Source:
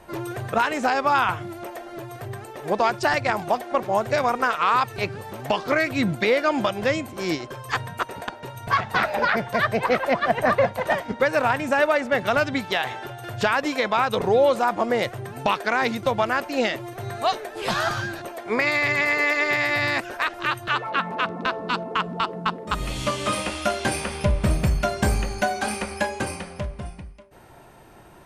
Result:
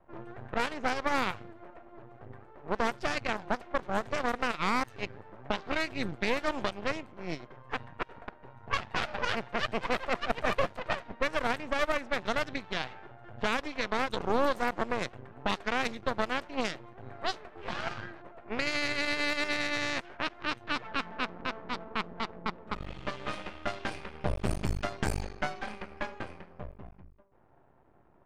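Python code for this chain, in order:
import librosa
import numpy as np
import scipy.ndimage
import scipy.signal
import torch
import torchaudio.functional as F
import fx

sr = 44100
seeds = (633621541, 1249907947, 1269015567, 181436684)

y = fx.cheby_harmonics(x, sr, harmonics=(2, 7), levels_db=(-10, -29), full_scale_db=-8.5)
y = np.maximum(y, 0.0)
y = fx.env_lowpass(y, sr, base_hz=1200.0, full_db=-16.0)
y = y * 10.0 ** (-7.5 / 20.0)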